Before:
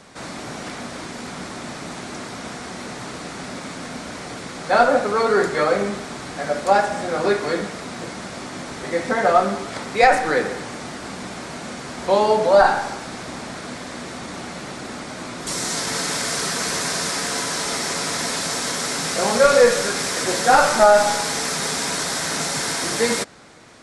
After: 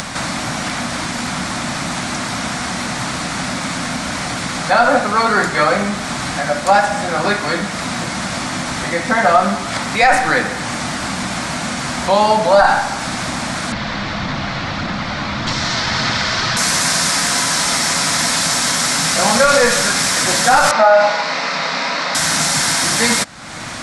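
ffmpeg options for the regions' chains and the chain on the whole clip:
-filter_complex "[0:a]asettb=1/sr,asplit=3[a][b][c];[a]atrim=end=13.724[d];[b]atrim=start=13.72:end=16.57,asetpts=PTS-STARTPTS,afade=t=in:d=0.004:c=qsin,afade=t=out:st=2.846:d=0.004:c=qsin,afreqshift=-41,lowpass=f=4.8k:w=0.5412,lowpass=f=4.8k:w=1.3066,aphaser=in_gain=1:out_gain=1:delay=2.8:decay=0.2:speed=1.7:type=sinusoidal[e];[c]atrim=start=16.566[f];[d][e]acrossfade=d=0.004:c1=hsin:c2=qsin[g];[g][f]acrossfade=d=0.004:c1=qsin:c2=hsin,asettb=1/sr,asplit=3[h][i][j];[h]atrim=end=20.714[k];[i]atrim=start=20.71:end=22.15,asetpts=PTS-STARTPTS,afade=t=in:d=0.004:c=qsin,afade=t=out:st=1.436:d=0.004:c=qsin,highpass=f=220:w=0.5412,highpass=f=220:w=1.3066,equalizer=f=240:t=q:w=4:g=-6,equalizer=f=360:t=q:w=4:g=-8,equalizer=f=540:t=q:w=4:g=4,equalizer=f=780:t=q:w=4:g=-3,equalizer=f=1.6k:t=q:w=4:g=-5,equalizer=f=3.3k:t=q:w=4:g=-8,lowpass=f=4k:w=0.5412,lowpass=f=4k:w=1.3066,asplit=2[l][m];[m]adelay=31,volume=-4.5dB[n];[l][n]amix=inputs=2:normalize=0,atrim=end_sample=63504[o];[j]atrim=start=22.146[p];[k][o]acrossfade=d=0.004:c1=hsin:c2=qsin[q];[q][p]acrossfade=d=0.004:c1=qsin:c2=hsin,acompressor=mode=upward:threshold=-22dB:ratio=2.5,equalizer=f=420:w=2.2:g=-14.5,alimiter=level_in=9.5dB:limit=-1dB:release=50:level=0:latency=1,volume=-1dB"

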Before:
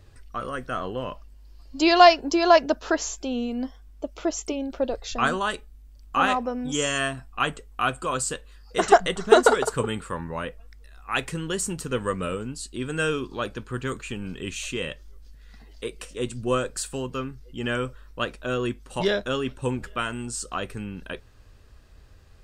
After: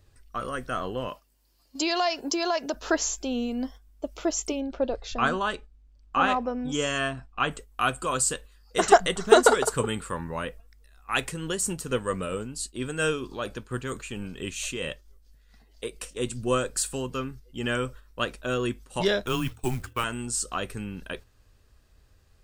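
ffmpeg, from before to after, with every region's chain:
-filter_complex "[0:a]asettb=1/sr,asplit=3[a][b][c];[a]atrim=end=1.084[d];[b]atrim=start=1.08:end=2.74,asetpts=PTS-STARTPTS,afade=t=in:d=0.004:c=qsin,afade=t=out:st=1.656:d=0.004:c=qsin,highpass=f=220:p=1,highshelf=f=7.7k:g=6,acompressor=threshold=-24dB:ratio=3:attack=3.2:release=140:knee=1:detection=peak[e];[c]atrim=start=2.736[f];[d][e]acrossfade=d=0.004:c1=hsin:c2=qsin[g];[g][f]acrossfade=d=0.004:c1=qsin:c2=hsin,asettb=1/sr,asplit=3[h][i][j];[h]atrim=end=4.604[k];[i]atrim=start=4.6:end=7.51,asetpts=PTS-STARTPTS,afade=t=in:d=0.004:c=qsin,afade=t=out:st=2.906:d=0.004:c=qsin,lowpass=7.9k,aemphasis=mode=reproduction:type=50kf,bandreject=f=1.9k:w=23[l];[j]atrim=start=7.506[m];[k][l]acrossfade=d=0.004:c1=hsin:c2=qsin[n];[n][m]acrossfade=d=0.004:c1=qsin:c2=hsin,asettb=1/sr,asplit=3[o][p][q];[o]atrim=end=11.254[r];[p]atrim=start=11.25:end=16.01,asetpts=PTS-STARTPTS,afade=t=in:d=0.004:c=qsin,afade=t=out:st=4.756:d=0.004:c=qsin,equalizer=f=630:t=o:w=0.77:g=3,tremolo=f=4.4:d=0.38[s];[q]atrim=start=16.006[t];[r][s]acrossfade=d=0.004:c1=hsin:c2=qsin[u];[u][t]acrossfade=d=0.004:c1=qsin:c2=hsin,asettb=1/sr,asplit=3[v][w][x];[v]atrim=end=19.264[y];[w]atrim=start=19.26:end=20.04,asetpts=PTS-STARTPTS,afade=t=in:d=0.004:c=qsin,afade=t=out:st=0.776:d=0.004:c=qsin,afreqshift=-120,agate=range=-33dB:threshold=-37dB:ratio=3:release=100:detection=peak,acrusher=bits=6:mode=log:mix=0:aa=0.000001[z];[x]atrim=start=20.036[aa];[y][z]acrossfade=d=0.004:c1=hsin:c2=qsin[ab];[ab][aa]acrossfade=d=0.004:c1=qsin:c2=hsin,agate=range=-7dB:threshold=-41dB:ratio=16:detection=peak,highshelf=f=6.5k:g=8,volume=-1dB"

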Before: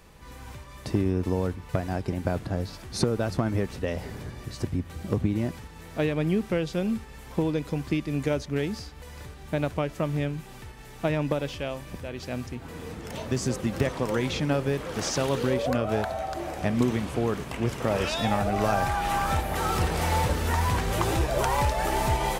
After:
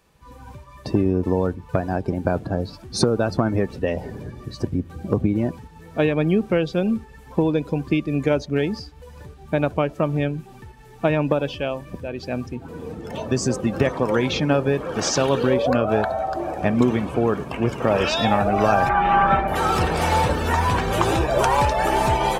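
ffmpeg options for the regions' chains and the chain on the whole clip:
-filter_complex "[0:a]asettb=1/sr,asplit=3[a][b][c];[a]atrim=end=18.894[d];[b]atrim=start=18.89:end=19.48,asetpts=PTS-STARTPTS,afade=t=in:d=0.004:c=qsin,afade=t=out:st=0.586:d=0.004:c=qsin,lowpass=2.8k,aecho=1:1:5.2:0.7,atrim=end_sample=26019[e];[c]atrim=start=19.476[f];[d][e]acrossfade=d=0.004:c1=hsin:c2=qsin[g];[g][f]acrossfade=d=0.004:c1=qsin:c2=hsin,lowshelf=f=110:g=-8.5,bandreject=f=2k:w=17,afftdn=nr=14:nf=-40,volume=7.5dB"

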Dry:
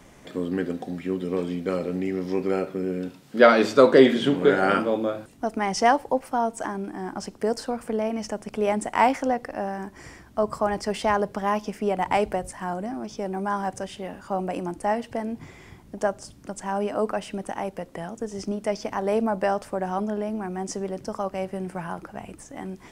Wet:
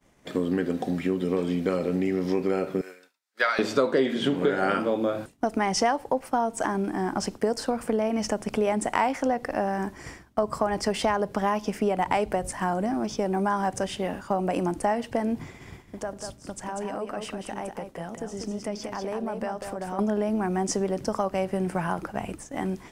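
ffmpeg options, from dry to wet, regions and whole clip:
-filter_complex "[0:a]asettb=1/sr,asplit=3[a][b][c];[a]atrim=end=2.814[d];[b]atrim=start=2.81:end=3.59,asetpts=PTS-STARTPTS,afade=t=in:d=0.004:c=qsin,afade=t=out:st=0.776:d=0.004:c=qsin,highpass=1.3k,equalizer=f=3k:t=o:w=0.34:g=-8[e];[c]atrim=start=3.586[f];[d][e]acrossfade=d=0.004:c1=hsin:c2=qsin[g];[g][f]acrossfade=d=0.004:c1=qsin:c2=hsin,asettb=1/sr,asplit=3[h][i][j];[h]atrim=end=15.354[k];[i]atrim=start=15.35:end=19.99,asetpts=PTS-STARTPTS,afade=t=in:d=0.004:c=qsin,afade=t=out:st=4.636:d=0.004:c=qsin,acompressor=threshold=-39dB:ratio=3:attack=3.2:release=140:knee=1:detection=peak,aecho=1:1:194:0.531,atrim=end_sample=204624[l];[j]atrim=start=19.986[m];[k][l]acrossfade=d=0.004:c1=hsin:c2=qsin[n];[n][m]acrossfade=d=0.004:c1=qsin:c2=hsin,acompressor=threshold=-28dB:ratio=4,agate=range=-33dB:threshold=-39dB:ratio=3:detection=peak,volume=6dB"

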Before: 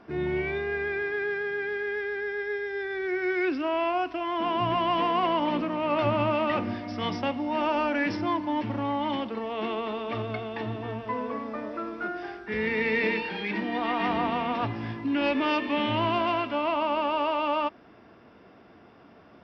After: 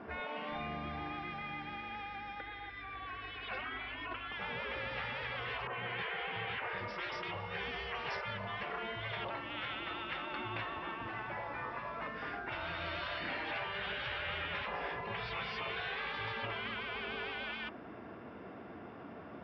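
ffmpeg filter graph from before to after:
-filter_complex "[0:a]asettb=1/sr,asplit=3[a][b][c];[a]atrim=end=2.404[d];[b]atrim=start=2.4:end=4.32,asetpts=PTS-STARTPTS,afade=t=in:d=0.004:c=qsin,afade=t=out:st=1.916:d=0.004:c=qsin,lowpass=f=3.9k:w=0.5412,lowpass=f=3.9k:w=1.3066,aecho=1:1:2.7:0.8,atrim=end_sample=84672[e];[c]atrim=start=4.316[f];[d][e]acrossfade=d=0.004:c1=hsin:c2=qsin[g];[g][f]acrossfade=d=0.004:c1=qsin:c2=hsin,asettb=1/sr,asplit=3[h][i][j];[h]atrim=end=5.674[k];[i]atrim=start=5.67:end=6.78,asetpts=PTS-STARTPTS,afade=t=in:d=0.004:c=qsin,afade=t=out:st=1.106:d=0.004:c=qsin,highpass=100,lowpass=2.4k,adynamicequalizer=threshold=0.01:dfrequency=1700:dqfactor=0.7:tfrequency=1700:tqfactor=0.7:attack=5:release=100:ratio=0.375:range=3:mode=boostabove:tftype=highshelf[l];[j]atrim=start=6.776[m];[k][l]acrossfade=d=0.004:c1=hsin:c2=qsin[n];[n][m]acrossfade=d=0.004:c1=qsin:c2=hsin,highpass=50,afftfilt=real='re*lt(hypot(re,im),0.0447)':imag='im*lt(hypot(re,im),0.0447)':win_size=1024:overlap=0.75,lowpass=2.6k,volume=4.5dB"

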